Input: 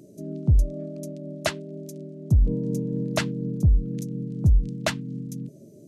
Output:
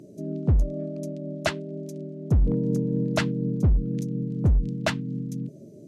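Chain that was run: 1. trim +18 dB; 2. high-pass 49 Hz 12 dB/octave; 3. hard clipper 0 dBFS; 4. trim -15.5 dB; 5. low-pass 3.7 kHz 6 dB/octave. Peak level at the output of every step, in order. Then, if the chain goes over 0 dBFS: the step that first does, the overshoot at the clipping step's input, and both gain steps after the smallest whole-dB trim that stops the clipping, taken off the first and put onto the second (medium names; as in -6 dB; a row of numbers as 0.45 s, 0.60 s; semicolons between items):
+7.0 dBFS, +7.5 dBFS, 0.0 dBFS, -15.5 dBFS, -15.5 dBFS; step 1, 7.5 dB; step 1 +10 dB, step 4 -7.5 dB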